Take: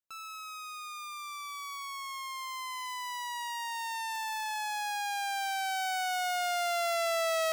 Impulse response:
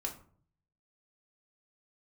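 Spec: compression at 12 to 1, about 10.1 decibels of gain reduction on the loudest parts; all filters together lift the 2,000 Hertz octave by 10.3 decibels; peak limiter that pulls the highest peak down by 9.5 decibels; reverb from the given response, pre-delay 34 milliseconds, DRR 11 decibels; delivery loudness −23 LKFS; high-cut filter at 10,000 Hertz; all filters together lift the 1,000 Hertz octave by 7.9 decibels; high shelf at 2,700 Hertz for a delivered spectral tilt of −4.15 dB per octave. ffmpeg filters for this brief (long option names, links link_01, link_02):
-filter_complex "[0:a]lowpass=10000,equalizer=frequency=1000:width_type=o:gain=8,equalizer=frequency=2000:width_type=o:gain=7.5,highshelf=frequency=2700:gain=7,acompressor=threshold=-29dB:ratio=12,alimiter=level_in=10dB:limit=-24dB:level=0:latency=1,volume=-10dB,asplit=2[link_01][link_02];[1:a]atrim=start_sample=2205,adelay=34[link_03];[link_02][link_03]afir=irnorm=-1:irlink=0,volume=-11.5dB[link_04];[link_01][link_04]amix=inputs=2:normalize=0,volume=16.5dB"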